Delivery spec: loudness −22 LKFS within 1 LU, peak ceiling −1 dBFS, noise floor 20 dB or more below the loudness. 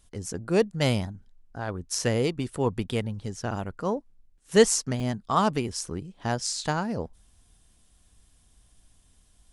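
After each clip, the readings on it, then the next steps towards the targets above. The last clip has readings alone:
number of dropouts 1; longest dropout 1.7 ms; integrated loudness −27.5 LKFS; sample peak −4.5 dBFS; target loudness −22.0 LKFS
→ repair the gap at 0:05.00, 1.7 ms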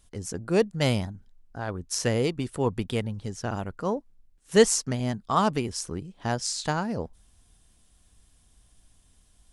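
number of dropouts 0; integrated loudness −27.5 LKFS; sample peak −4.5 dBFS; target loudness −22.0 LKFS
→ level +5.5 dB
brickwall limiter −1 dBFS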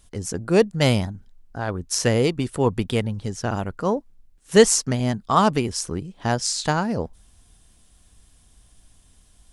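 integrated loudness −22.5 LKFS; sample peak −1.0 dBFS; background noise floor −56 dBFS

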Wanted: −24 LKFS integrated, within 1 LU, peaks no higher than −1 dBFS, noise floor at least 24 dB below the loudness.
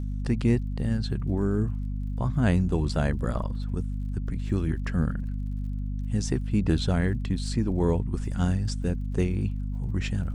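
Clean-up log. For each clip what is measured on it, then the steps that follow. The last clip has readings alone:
crackle rate 41 per second; mains hum 50 Hz; hum harmonics up to 250 Hz; level of the hum −28 dBFS; integrated loudness −28.0 LKFS; sample peak −8.5 dBFS; target loudness −24.0 LKFS
→ click removal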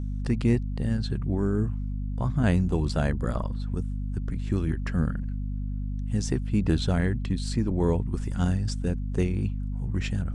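crackle rate 0.097 per second; mains hum 50 Hz; hum harmonics up to 250 Hz; level of the hum −28 dBFS
→ hum removal 50 Hz, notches 5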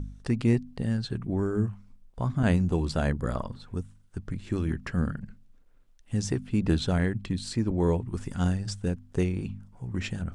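mains hum none found; integrated loudness −29.5 LKFS; sample peak −10.0 dBFS; target loudness −24.0 LKFS
→ level +5.5 dB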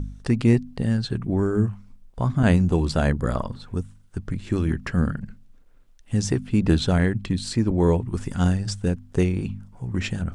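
integrated loudness −24.0 LKFS; sample peak −4.5 dBFS; background noise floor −51 dBFS

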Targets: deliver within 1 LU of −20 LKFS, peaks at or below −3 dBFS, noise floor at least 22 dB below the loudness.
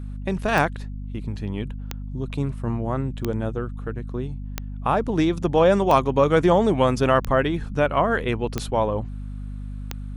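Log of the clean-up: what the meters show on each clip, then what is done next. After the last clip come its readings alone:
number of clicks 8; mains hum 50 Hz; hum harmonics up to 250 Hz; level of the hum −30 dBFS; integrated loudness −23.0 LKFS; sample peak −5.0 dBFS; target loudness −20.0 LKFS
→ click removal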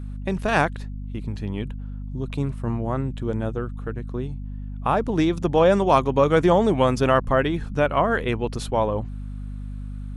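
number of clicks 0; mains hum 50 Hz; hum harmonics up to 250 Hz; level of the hum −30 dBFS
→ mains-hum notches 50/100/150/200/250 Hz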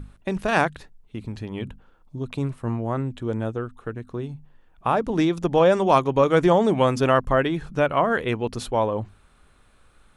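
mains hum none found; integrated loudness −23.0 LKFS; sample peak −4.5 dBFS; target loudness −20.0 LKFS
→ level +3 dB
brickwall limiter −3 dBFS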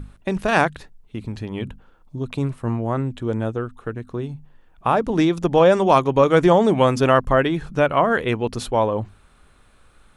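integrated loudness −20.0 LKFS; sample peak −3.0 dBFS; background noise floor −54 dBFS

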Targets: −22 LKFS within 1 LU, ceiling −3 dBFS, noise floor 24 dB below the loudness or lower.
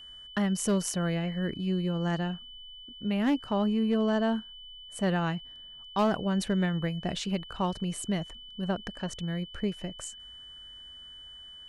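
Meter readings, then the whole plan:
share of clipped samples 0.3%; peaks flattened at −19.5 dBFS; interfering tone 3,000 Hz; level of the tone −45 dBFS; integrated loudness −30.5 LKFS; sample peak −19.5 dBFS; target loudness −22.0 LKFS
→ clipped peaks rebuilt −19.5 dBFS
notch filter 3,000 Hz, Q 30
level +8.5 dB

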